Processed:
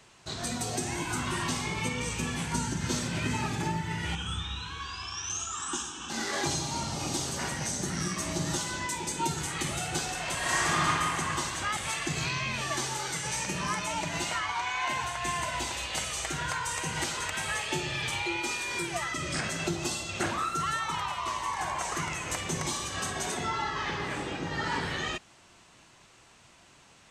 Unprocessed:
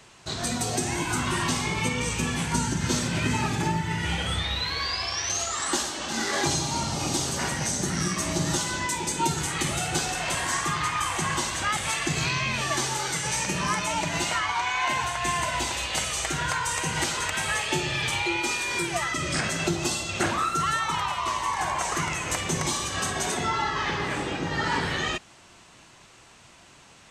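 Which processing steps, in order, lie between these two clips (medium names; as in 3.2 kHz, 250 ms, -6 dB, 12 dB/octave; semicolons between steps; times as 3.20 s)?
4.15–6.10 s: static phaser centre 3 kHz, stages 8; 10.37–10.87 s: reverb throw, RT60 2.5 s, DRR -6 dB; trim -5 dB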